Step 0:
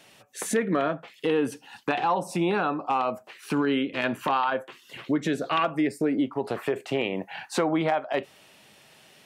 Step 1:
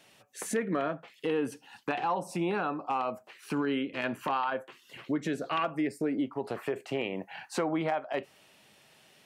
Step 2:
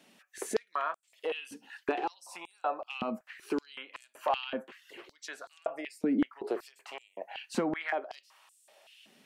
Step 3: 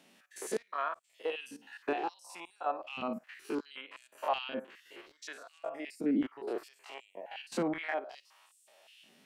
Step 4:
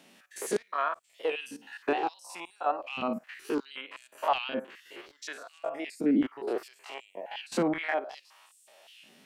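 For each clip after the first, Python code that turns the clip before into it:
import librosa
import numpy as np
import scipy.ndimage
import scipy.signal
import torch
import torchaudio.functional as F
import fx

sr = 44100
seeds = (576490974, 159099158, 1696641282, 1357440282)

y1 = fx.dynamic_eq(x, sr, hz=3600.0, q=7.5, threshold_db=-58.0, ratio=4.0, max_db=-6)
y1 = y1 * 10.0 ** (-5.5 / 20.0)
y2 = fx.filter_held_highpass(y1, sr, hz=5.3, low_hz=220.0, high_hz=8000.0)
y2 = y2 * 10.0 ** (-3.5 / 20.0)
y3 = fx.spec_steps(y2, sr, hold_ms=50)
y4 = fx.record_warp(y3, sr, rpm=78.0, depth_cents=100.0)
y4 = y4 * 10.0 ** (5.0 / 20.0)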